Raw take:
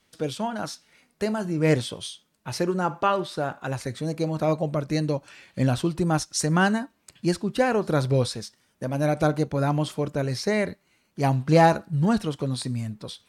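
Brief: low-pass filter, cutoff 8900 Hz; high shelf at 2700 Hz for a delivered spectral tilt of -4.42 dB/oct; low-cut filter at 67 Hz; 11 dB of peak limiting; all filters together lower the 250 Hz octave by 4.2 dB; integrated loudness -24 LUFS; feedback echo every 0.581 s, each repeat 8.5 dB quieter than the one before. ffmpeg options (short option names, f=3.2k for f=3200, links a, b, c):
-af "highpass=67,lowpass=8.9k,equalizer=f=250:t=o:g=-6.5,highshelf=f=2.7k:g=8,alimiter=limit=-15dB:level=0:latency=1,aecho=1:1:581|1162|1743|2324:0.376|0.143|0.0543|0.0206,volume=3.5dB"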